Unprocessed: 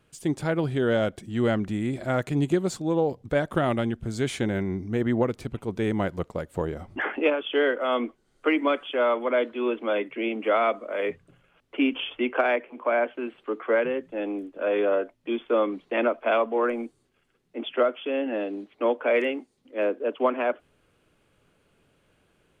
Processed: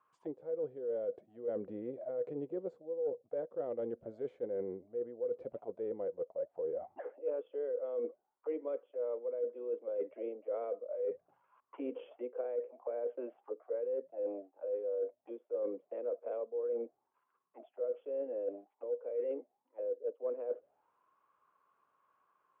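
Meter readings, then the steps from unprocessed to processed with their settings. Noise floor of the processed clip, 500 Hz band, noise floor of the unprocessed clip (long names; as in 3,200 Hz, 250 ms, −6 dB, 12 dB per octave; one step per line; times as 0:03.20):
−82 dBFS, −10.5 dB, −68 dBFS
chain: envelope filter 490–1,100 Hz, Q 14, down, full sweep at −25 dBFS
reversed playback
downward compressor 8 to 1, threshold −45 dBFS, peak gain reduction 22 dB
reversed playback
high-shelf EQ 4,100 Hz −10.5 dB
level +10.5 dB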